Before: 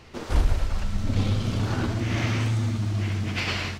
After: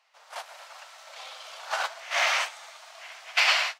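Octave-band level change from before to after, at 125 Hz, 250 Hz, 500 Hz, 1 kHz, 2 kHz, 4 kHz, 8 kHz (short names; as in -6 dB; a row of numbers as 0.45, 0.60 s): under -40 dB, under -40 dB, -3.5 dB, +4.5 dB, +6.5 dB, +6.0 dB, +4.5 dB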